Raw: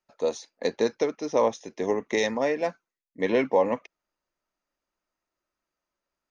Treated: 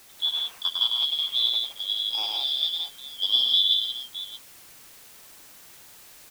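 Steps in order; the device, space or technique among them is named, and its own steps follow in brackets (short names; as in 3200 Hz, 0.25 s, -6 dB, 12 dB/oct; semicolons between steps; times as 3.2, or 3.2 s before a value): 1.26–2.56 Bessel high-pass 400 Hz; high shelf 3100 Hz -10.5 dB; split-band scrambled radio (four-band scrambler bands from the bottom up 3412; BPF 330–3100 Hz; white noise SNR 21 dB); tapped delay 0.103/0.17/0.616 s -3.5/-4/-13 dB; gain +3 dB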